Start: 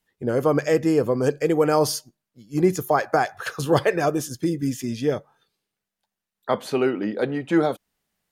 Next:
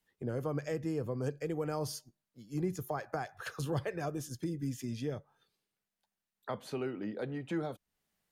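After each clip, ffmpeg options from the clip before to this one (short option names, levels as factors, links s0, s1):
-filter_complex "[0:a]acrossover=split=140[s0][s1];[s1]acompressor=threshold=0.0112:ratio=2[s2];[s0][s2]amix=inputs=2:normalize=0,volume=0.562"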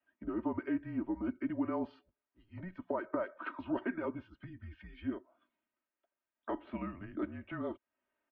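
-filter_complex "[0:a]acrossover=split=320 2600:gain=0.141 1 0.141[s0][s1][s2];[s0][s1][s2]amix=inputs=3:normalize=0,highpass=f=300:t=q:w=0.5412,highpass=f=300:t=q:w=1.307,lowpass=f=3500:t=q:w=0.5176,lowpass=f=3500:t=q:w=0.7071,lowpass=f=3500:t=q:w=1.932,afreqshift=-190,aecho=1:1:3.2:0.71,volume=1.12"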